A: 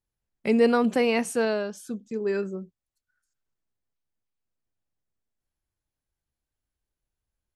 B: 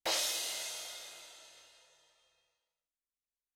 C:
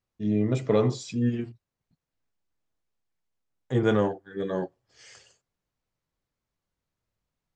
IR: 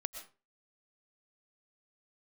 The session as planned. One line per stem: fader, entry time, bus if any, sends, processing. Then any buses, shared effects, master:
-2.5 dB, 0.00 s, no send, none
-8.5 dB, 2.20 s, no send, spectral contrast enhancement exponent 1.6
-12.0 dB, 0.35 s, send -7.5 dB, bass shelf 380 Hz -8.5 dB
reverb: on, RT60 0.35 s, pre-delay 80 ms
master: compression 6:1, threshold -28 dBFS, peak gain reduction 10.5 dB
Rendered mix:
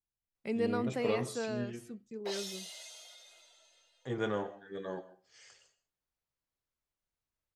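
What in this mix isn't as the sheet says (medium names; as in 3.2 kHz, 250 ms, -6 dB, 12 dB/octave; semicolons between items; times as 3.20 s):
stem A -2.5 dB -> -12.5 dB; stem C: send -7.5 dB -> -1 dB; master: missing compression 6:1, threshold -28 dBFS, peak gain reduction 10.5 dB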